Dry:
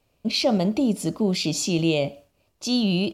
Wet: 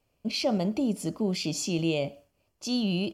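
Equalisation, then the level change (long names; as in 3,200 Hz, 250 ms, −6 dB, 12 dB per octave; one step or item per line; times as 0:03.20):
notch filter 3,800 Hz, Q 8
−5.5 dB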